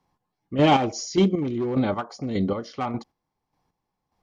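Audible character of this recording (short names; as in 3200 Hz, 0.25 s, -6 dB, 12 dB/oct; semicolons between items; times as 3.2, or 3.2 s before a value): chopped level 1.7 Hz, depth 60%, duty 30%; Vorbis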